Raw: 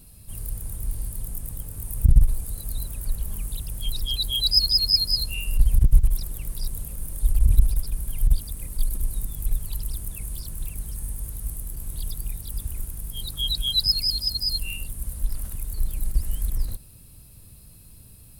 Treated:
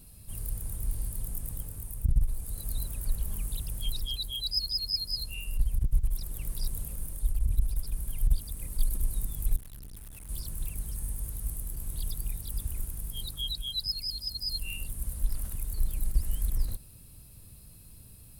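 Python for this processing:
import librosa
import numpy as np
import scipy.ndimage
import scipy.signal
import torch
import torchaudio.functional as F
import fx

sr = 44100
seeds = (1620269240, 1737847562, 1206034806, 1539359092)

y = fx.tube_stage(x, sr, drive_db=39.0, bias=0.75, at=(9.56, 10.29))
y = fx.rider(y, sr, range_db=4, speed_s=0.5)
y = y * 10.0 ** (-7.0 / 20.0)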